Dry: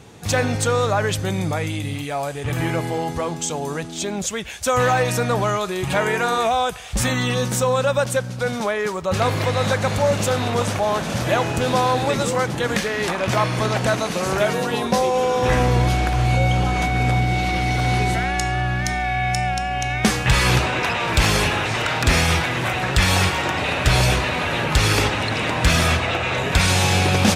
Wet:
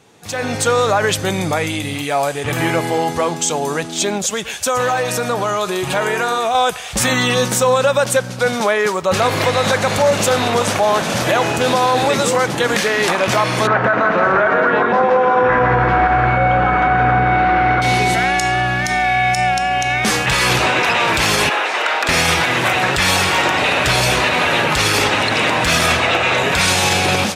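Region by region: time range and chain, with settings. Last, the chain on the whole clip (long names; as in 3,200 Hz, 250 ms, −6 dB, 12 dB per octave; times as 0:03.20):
0:04.17–0:06.55: parametric band 2,100 Hz −3.5 dB 0.43 octaves + downward compressor 2.5 to 1, threshold −24 dBFS + single-tap delay 117 ms −15.5 dB
0:13.67–0:17.82: low-pass with resonance 1,500 Hz, resonance Q 2.6 + echo with a time of its own for lows and highs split 570 Hz, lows 111 ms, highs 168 ms, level −5.5 dB
0:21.49–0:22.09: Bessel high-pass filter 520 Hz, order 4 + high-shelf EQ 3,400 Hz −10 dB
whole clip: high-pass filter 290 Hz 6 dB per octave; brickwall limiter −13.5 dBFS; automatic gain control gain up to 14.5 dB; level −3.5 dB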